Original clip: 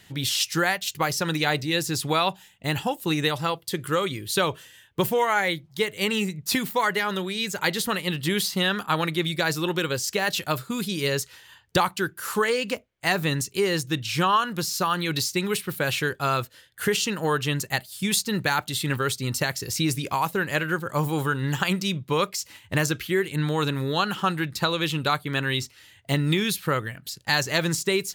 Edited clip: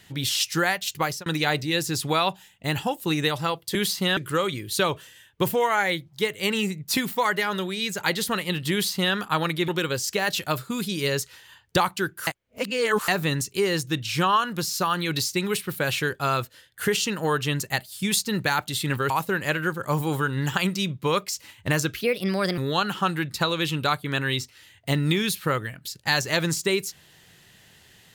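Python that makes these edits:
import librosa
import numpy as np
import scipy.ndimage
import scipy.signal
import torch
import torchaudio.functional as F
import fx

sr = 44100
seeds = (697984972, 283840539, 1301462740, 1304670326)

y = fx.edit(x, sr, fx.fade_out_span(start_s=0.97, length_s=0.29, curve='qsin'),
    fx.duplicate(start_s=8.3, length_s=0.42, to_s=3.75),
    fx.cut(start_s=9.26, length_s=0.42),
    fx.reverse_span(start_s=12.27, length_s=0.81),
    fx.cut(start_s=19.1, length_s=1.06),
    fx.speed_span(start_s=23.07, length_s=0.72, speed=1.27), tone=tone)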